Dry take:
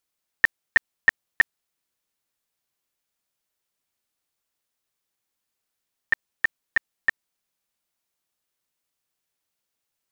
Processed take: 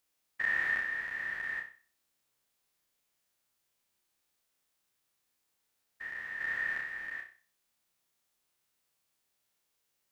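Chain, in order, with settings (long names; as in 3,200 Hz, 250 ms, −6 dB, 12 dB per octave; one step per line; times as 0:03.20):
spectrum averaged block by block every 400 ms
flutter between parallel walls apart 5.4 metres, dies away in 0.39 s
level +2 dB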